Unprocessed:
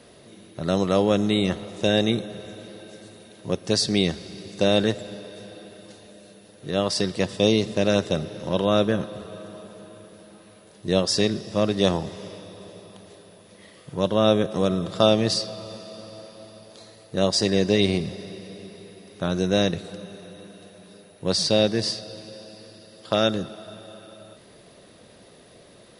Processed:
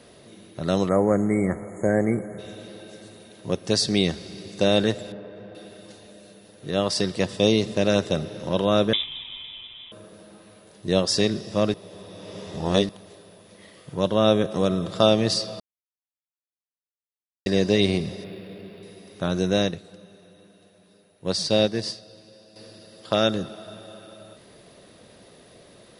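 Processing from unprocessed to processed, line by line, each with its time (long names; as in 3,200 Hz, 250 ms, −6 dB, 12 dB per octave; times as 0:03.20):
0:00.89–0:02.39: time-frequency box erased 2,300–6,500 Hz
0:05.12–0:05.55: low-pass filter 1,800 Hz
0:08.93–0:09.92: voice inversion scrambler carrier 3,700 Hz
0:11.74–0:12.89: reverse
0:15.60–0:17.46: silence
0:18.24–0:18.83: linearly interpolated sample-rate reduction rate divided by 6×
0:19.53–0:22.56: expander for the loud parts, over −36 dBFS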